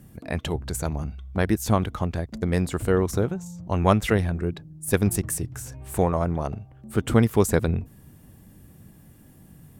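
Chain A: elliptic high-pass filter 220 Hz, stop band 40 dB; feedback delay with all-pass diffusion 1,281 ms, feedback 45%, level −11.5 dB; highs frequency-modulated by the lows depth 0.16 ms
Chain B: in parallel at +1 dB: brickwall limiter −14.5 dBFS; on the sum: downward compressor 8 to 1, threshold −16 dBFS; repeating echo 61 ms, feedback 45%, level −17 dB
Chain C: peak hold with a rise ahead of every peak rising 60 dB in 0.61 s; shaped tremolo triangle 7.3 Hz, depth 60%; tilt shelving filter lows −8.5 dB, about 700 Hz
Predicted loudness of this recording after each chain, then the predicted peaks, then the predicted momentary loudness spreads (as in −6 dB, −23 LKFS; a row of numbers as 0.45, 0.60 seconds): −28.0, −23.5, −25.0 LKFS; −5.5, −6.5, −1.5 dBFS; 15, 8, 13 LU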